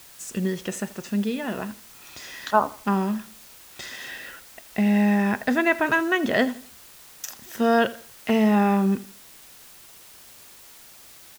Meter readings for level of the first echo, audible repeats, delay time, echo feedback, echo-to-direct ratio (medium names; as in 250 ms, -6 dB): -19.0 dB, 2, 82 ms, 32%, -18.5 dB